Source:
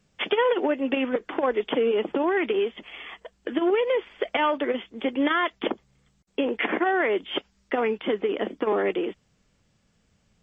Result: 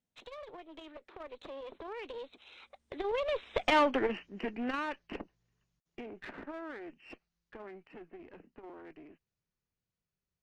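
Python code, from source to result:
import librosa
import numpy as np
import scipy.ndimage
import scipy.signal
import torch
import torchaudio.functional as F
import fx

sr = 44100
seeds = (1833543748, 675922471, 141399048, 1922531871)

y = fx.diode_clip(x, sr, knee_db=-27.5)
y = fx.doppler_pass(y, sr, speed_mps=55, closest_m=16.0, pass_at_s=3.78)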